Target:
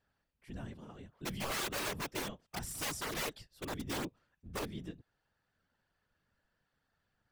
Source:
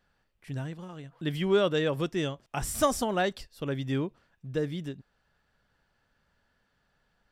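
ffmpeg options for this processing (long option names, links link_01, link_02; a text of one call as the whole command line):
ffmpeg -i in.wav -af "aeval=exprs='(mod(14.1*val(0)+1,2)-1)/14.1':channel_layout=same,afftfilt=real='hypot(re,im)*cos(2*PI*random(0))':imag='hypot(re,im)*sin(2*PI*random(1))':win_size=512:overlap=0.75,volume=-2.5dB" out.wav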